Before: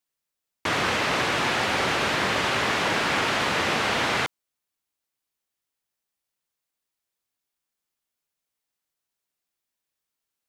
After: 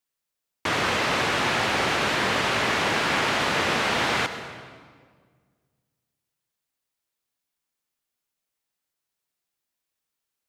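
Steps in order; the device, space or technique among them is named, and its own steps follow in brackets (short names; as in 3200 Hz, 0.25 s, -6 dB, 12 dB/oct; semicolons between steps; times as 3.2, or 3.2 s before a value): saturated reverb return (on a send at -7.5 dB: reverb RT60 1.7 s, pre-delay 69 ms + soft clip -20.5 dBFS, distortion -15 dB)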